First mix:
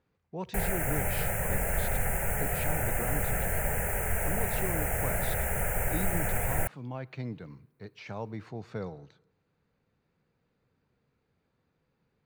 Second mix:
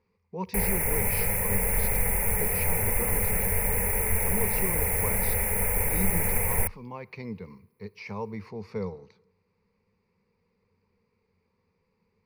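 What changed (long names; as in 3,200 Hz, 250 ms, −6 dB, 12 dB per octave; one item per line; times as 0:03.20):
background: add high-shelf EQ 10,000 Hz +8 dB
master: add EQ curve with evenly spaced ripples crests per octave 0.86, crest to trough 13 dB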